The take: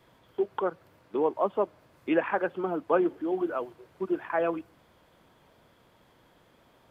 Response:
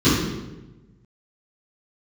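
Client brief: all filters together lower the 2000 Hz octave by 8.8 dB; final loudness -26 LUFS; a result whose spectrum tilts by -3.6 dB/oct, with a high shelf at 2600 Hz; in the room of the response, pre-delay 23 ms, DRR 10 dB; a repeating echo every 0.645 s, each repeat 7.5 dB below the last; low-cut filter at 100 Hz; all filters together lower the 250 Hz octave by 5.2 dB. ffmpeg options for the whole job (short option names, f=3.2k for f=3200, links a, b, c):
-filter_complex "[0:a]highpass=100,equalizer=f=250:t=o:g=-8.5,equalizer=f=2k:t=o:g=-9,highshelf=f=2.6k:g=-8.5,aecho=1:1:645|1290|1935|2580|3225:0.422|0.177|0.0744|0.0312|0.0131,asplit=2[a][b];[1:a]atrim=start_sample=2205,adelay=23[c];[b][c]afir=irnorm=-1:irlink=0,volume=-31dB[d];[a][d]amix=inputs=2:normalize=0,volume=5.5dB"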